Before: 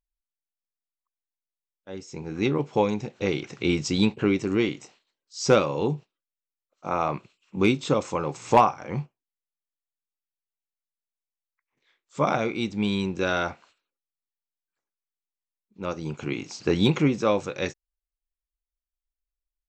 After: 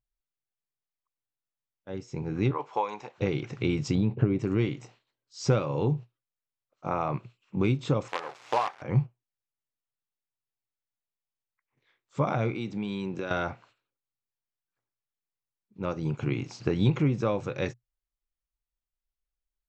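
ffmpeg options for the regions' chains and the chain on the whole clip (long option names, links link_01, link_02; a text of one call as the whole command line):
ffmpeg -i in.wav -filter_complex "[0:a]asettb=1/sr,asplit=3[link_01][link_02][link_03];[link_01]atrim=end=2.514[link_04];[link_02]atrim=start=2.51:end=3.18,asetpts=PTS-STARTPTS,afade=type=in:duration=0.004:curve=qsin,afade=type=out:start_time=0.666:duration=0.004:curve=qsin,highpass=650,equalizer=frequency=1000:width_type=o:width=0.6:gain=8.5[link_05];[link_03]atrim=start=3.176[link_06];[link_04][link_05]acrossfade=duration=0.004:curve1=hsin:curve2=qsin[link_07];[link_07][link_06]acrossfade=duration=0.004:curve1=qsin:curve2=hsin,asettb=1/sr,asplit=3[link_08][link_09][link_10];[link_08]atrim=end=3.954[link_11];[link_09]atrim=start=3.95:end=4.39,asetpts=PTS-STARTPTS,afade=type=in:duration=0.004:curve=qsin,afade=type=out:start_time=0.436:duration=0.004:curve=qsin,lowpass=frequency=3700:poles=1,tiltshelf=frequency=1100:gain=5,acompressor=threshold=-17dB:ratio=6:attack=3.2:release=140:knee=1:detection=peak[link_12];[link_10]atrim=start=4.386[link_13];[link_11][link_12]acrossfade=duration=0.004:curve1=hsin:curve2=qsin[link_14];[link_14][link_13]acrossfade=duration=0.004:curve1=qsin:curve2=hsin,asettb=1/sr,asplit=3[link_15][link_16][link_17];[link_15]atrim=end=8.084[link_18];[link_16]atrim=start=8.08:end=8.82,asetpts=PTS-STARTPTS,afade=type=in:duration=0.004:curve=qsin,afade=type=out:start_time=0.736:duration=0.004:curve=qsin,acrusher=bits=4:dc=4:mix=0:aa=0.000001,highpass=590,lowpass=5400[link_19];[link_17]atrim=start=8.816[link_20];[link_18][link_19]acrossfade=duration=0.004:curve1=hsin:curve2=qsin[link_21];[link_21][link_20]acrossfade=duration=0.004:curve1=qsin:curve2=hsin,asettb=1/sr,asplit=3[link_22][link_23][link_24];[link_22]atrim=end=12.544[link_25];[link_23]atrim=start=12.54:end=13.31,asetpts=PTS-STARTPTS,afade=type=in:duration=0.004:curve=qsin,afade=type=out:start_time=0.766:duration=0.004:curve=qsin,highpass=180,acompressor=threshold=-29dB:ratio=5:attack=3.2:release=140:knee=1:detection=peak[link_26];[link_24]atrim=start=13.306[link_27];[link_25][link_26]acrossfade=duration=0.004:curve1=hsin:curve2=qsin[link_28];[link_28][link_27]acrossfade=duration=0.004:curve1=qsin:curve2=hsin,highshelf=frequency=4200:gain=-11.5,acompressor=threshold=-26dB:ratio=2.5,equalizer=frequency=120:width_type=o:width=0.43:gain=14.5" out.wav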